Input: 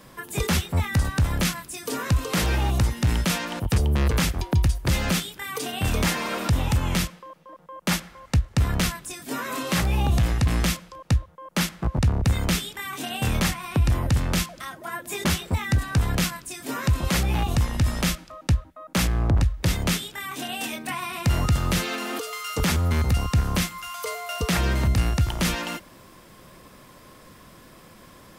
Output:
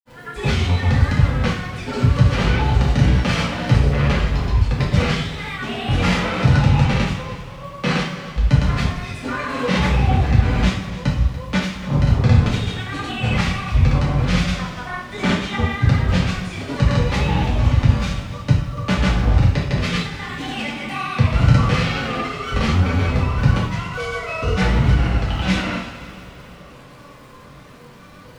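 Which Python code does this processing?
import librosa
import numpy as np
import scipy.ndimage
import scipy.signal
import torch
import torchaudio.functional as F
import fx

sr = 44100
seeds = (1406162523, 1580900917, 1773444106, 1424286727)

y = scipy.signal.sosfilt(scipy.signal.butter(2, 3800.0, 'lowpass', fs=sr, output='sos'), x)
y = y + 0.39 * np.pad(y, (int(7.3 * sr / 1000.0), 0))[:len(y)]
y = fx.wow_flutter(y, sr, seeds[0], rate_hz=2.1, depth_cents=140.0)
y = fx.dmg_crackle(y, sr, seeds[1], per_s=320.0, level_db=-44.0)
y = fx.granulator(y, sr, seeds[2], grain_ms=100.0, per_s=20.0, spray_ms=100.0, spread_st=0)
y = y + 10.0 ** (-15.5 / 20.0) * np.pad(y, (int(288 * sr / 1000.0), 0))[:len(y)]
y = fx.rev_double_slope(y, sr, seeds[3], early_s=0.58, late_s=3.8, knee_db=-18, drr_db=-5.5)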